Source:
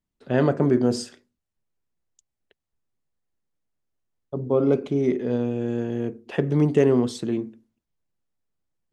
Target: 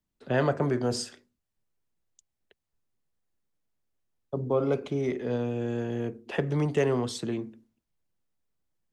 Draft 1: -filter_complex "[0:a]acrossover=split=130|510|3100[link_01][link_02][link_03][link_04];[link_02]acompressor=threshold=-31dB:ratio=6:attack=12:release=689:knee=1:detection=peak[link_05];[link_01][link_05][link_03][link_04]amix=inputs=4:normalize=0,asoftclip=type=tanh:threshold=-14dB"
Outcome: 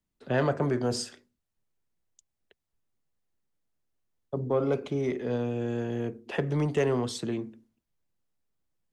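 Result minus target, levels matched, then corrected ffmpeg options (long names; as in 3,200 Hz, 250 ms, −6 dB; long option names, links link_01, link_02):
soft clipping: distortion +16 dB
-filter_complex "[0:a]acrossover=split=130|510|3100[link_01][link_02][link_03][link_04];[link_02]acompressor=threshold=-31dB:ratio=6:attack=12:release=689:knee=1:detection=peak[link_05];[link_01][link_05][link_03][link_04]amix=inputs=4:normalize=0,asoftclip=type=tanh:threshold=-5dB"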